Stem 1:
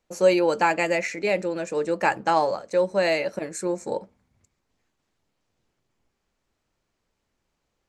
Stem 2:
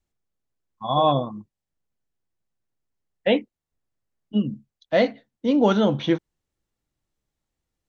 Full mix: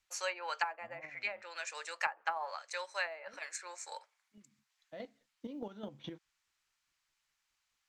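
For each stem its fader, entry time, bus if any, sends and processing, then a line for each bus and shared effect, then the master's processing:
+1.0 dB, 0.00 s, no send, Bessel high-pass filter 1,600 Hz, order 4
−11.0 dB, 0.00 s, no send, square-wave tremolo 4.8 Hz, depth 65%, duty 25%; downward compressor 6 to 1, threshold −30 dBFS, peak gain reduction 15.5 dB; automatic ducking −18 dB, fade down 1.80 s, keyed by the first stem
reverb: not used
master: treble cut that deepens with the level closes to 590 Hz, closed at −25.5 dBFS; floating-point word with a short mantissa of 6 bits

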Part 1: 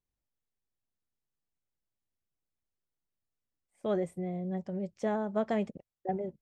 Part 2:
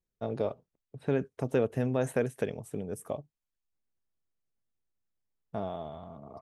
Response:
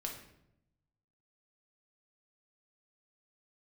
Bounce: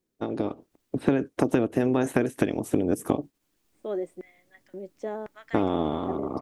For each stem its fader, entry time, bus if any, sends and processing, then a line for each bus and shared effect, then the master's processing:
−13.0 dB, 0.00 s, no send, auto-filter high-pass square 0.95 Hz 320–1,900 Hz
+2.0 dB, 0.00 s, no send, ceiling on every frequency bin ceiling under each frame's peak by 13 dB; parametric band 300 Hz +13 dB 1 octave; downward compressor 12 to 1, threshold −29 dBFS, peak gain reduction 14.5 dB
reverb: not used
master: automatic gain control gain up to 8.5 dB

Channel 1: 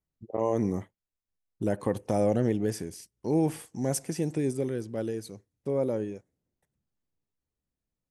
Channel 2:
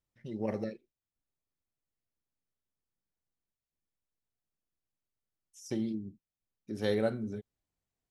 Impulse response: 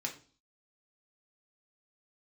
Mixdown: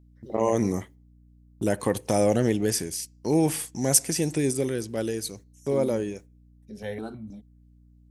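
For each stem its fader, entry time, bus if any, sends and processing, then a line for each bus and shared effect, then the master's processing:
+2.5 dB, 0.00 s, send −22 dB, noise gate −48 dBFS, range −17 dB; high-shelf EQ 2,100 Hz +11.5 dB; mains hum 60 Hz, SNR 27 dB
+0.5 dB, 0.00 s, no send, step-sequenced phaser 6.3 Hz 240–1,600 Hz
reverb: on, RT60 0.40 s, pre-delay 3 ms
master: no processing

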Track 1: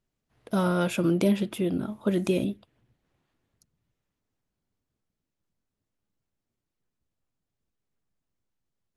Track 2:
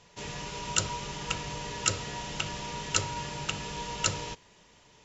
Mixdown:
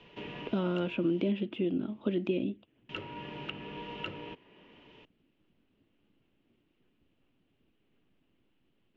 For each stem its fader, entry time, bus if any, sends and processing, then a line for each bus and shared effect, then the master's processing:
−3.0 dB, 0.00 s, no send, no processing
−13.5 dB, 0.00 s, muted 0:01.30–0:02.89, no send, no processing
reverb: not used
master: transistor ladder low-pass 3,200 Hz, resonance 65%; parametric band 300 Hz +13 dB 1.5 octaves; multiband upward and downward compressor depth 70%

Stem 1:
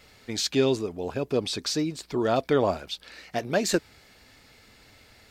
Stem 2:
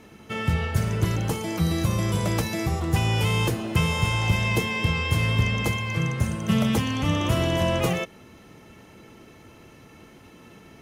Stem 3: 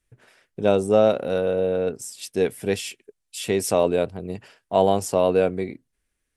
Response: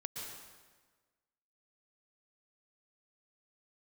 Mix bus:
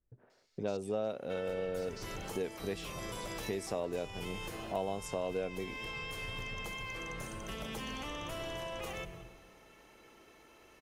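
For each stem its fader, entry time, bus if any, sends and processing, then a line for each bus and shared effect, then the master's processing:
−18.5 dB, 0.30 s, bus A, no send, parametric band 5,700 Hz +12.5 dB 1.2 octaves; automatic ducking −8 dB, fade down 0.50 s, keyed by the third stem
−8.5 dB, 1.00 s, bus A, send −14 dB, sub-octave generator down 2 octaves, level +1 dB
−5.0 dB, 0.00 s, no bus, no send, low-pass that shuts in the quiet parts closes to 800 Hz, open at −17 dBFS
bus A: 0.0 dB, high-pass filter 380 Hz 12 dB per octave; brickwall limiter −31 dBFS, peak gain reduction 8.5 dB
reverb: on, RT60 1.4 s, pre-delay 108 ms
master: downward compressor 2.5 to 1, threshold −38 dBFS, peak gain reduction 14 dB

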